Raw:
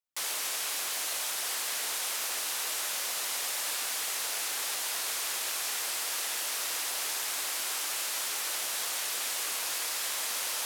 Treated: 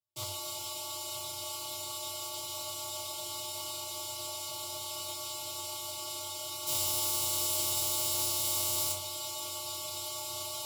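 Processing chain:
lower of the sound and its delayed copy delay 3.6 ms
reverb reduction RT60 0.62 s
high-shelf EQ 4,400 Hz −4 dB, from 0:06.67 +9.5 dB, from 0:08.92 −3 dB
wrap-around overflow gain 24 dB
phases set to zero 260 Hz
frequency shifter +93 Hz
Butterworth band-reject 1,700 Hz, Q 1.2
convolution reverb, pre-delay 6 ms, DRR −1 dB
highs frequency-modulated by the lows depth 0.15 ms

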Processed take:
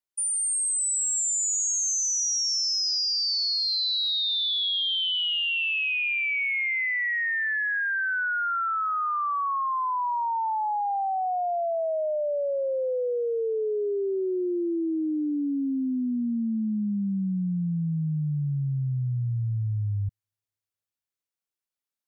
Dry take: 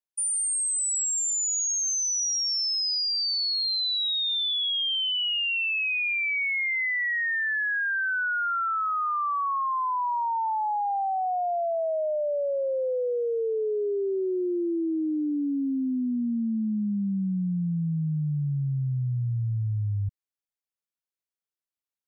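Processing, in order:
delay with a high-pass on its return 244 ms, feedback 51%, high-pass 3,300 Hz, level −8.5 dB

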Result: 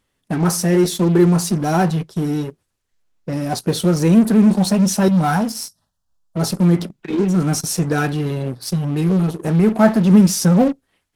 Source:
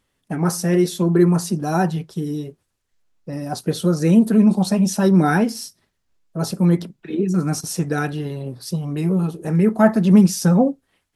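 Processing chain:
0:05.08–0:06.37: phaser with its sweep stopped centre 900 Hz, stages 4
in parallel at −11.5 dB: fuzz pedal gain 29 dB, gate −36 dBFS

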